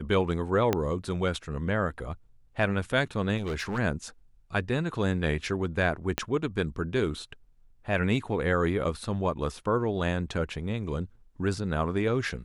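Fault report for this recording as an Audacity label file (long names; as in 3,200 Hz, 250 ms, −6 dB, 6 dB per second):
0.730000	0.730000	click −10 dBFS
3.380000	3.790000	clipping −27.5 dBFS
6.180000	6.180000	click −10 dBFS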